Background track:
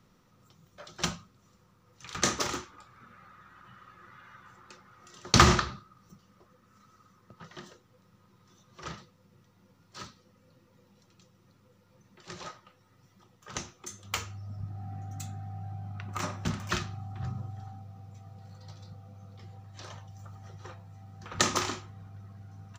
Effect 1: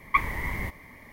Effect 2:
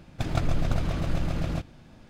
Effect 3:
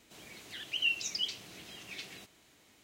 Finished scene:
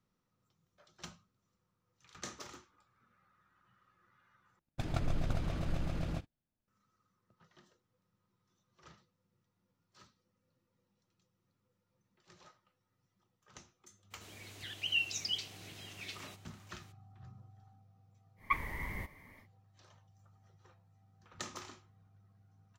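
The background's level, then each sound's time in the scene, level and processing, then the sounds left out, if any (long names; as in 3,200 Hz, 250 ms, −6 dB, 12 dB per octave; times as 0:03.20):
background track −18 dB
0:04.59: overwrite with 2 −8.5 dB + noise gate −44 dBFS, range −32 dB
0:14.10: mix in 3 −2 dB, fades 0.02 s
0:18.36: mix in 1 −9.5 dB, fades 0.10 s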